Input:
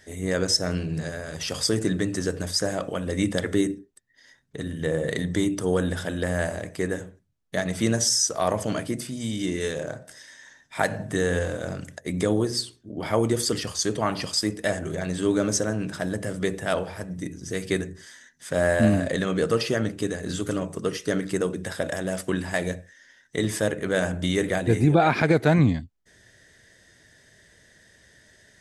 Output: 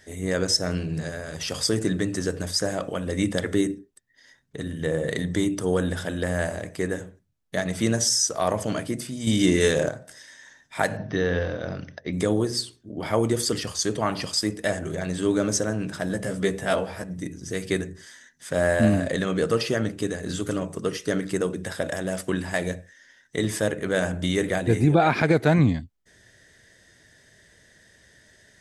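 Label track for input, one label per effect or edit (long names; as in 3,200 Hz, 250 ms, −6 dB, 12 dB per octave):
9.270000	9.890000	clip gain +8 dB
10.970000	12.130000	linear-phase brick-wall low-pass 6,200 Hz
16.080000	17.040000	double-tracking delay 15 ms −4 dB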